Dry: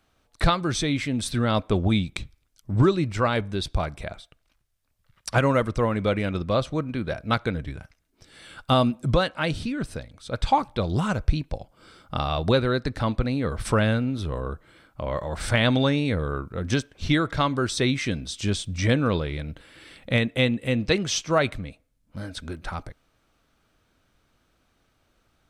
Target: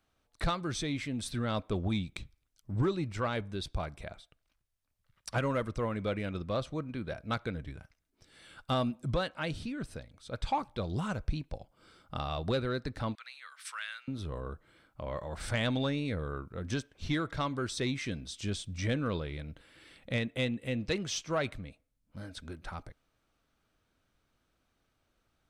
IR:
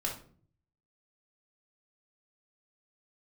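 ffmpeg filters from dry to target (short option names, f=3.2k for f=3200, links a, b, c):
-filter_complex "[0:a]asettb=1/sr,asplit=3[a][b][c];[a]atrim=end=13.154[d];[b]atrim=start=13.15:end=14.08,asetpts=PTS-STARTPTS,afade=t=in:d=0.004:c=qsin,afade=t=out:st=0.926:d=0.004:c=qsin,highpass=f=1.4k:w=0.5412,highpass=f=1.4k:w=1.3066[e];[c]atrim=start=14.076[f];[d][e]acrossfade=d=0.004:c1=hsin:c2=qsin[g];[g][f]acrossfade=d=0.004:c1=qsin:c2=hsin,asoftclip=type=tanh:threshold=-11.5dB,volume=-9dB"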